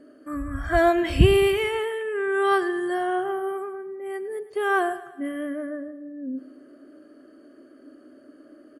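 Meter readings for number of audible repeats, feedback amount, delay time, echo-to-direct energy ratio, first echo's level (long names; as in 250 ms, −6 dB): 4, 53%, 107 ms, −14.5 dB, −16.0 dB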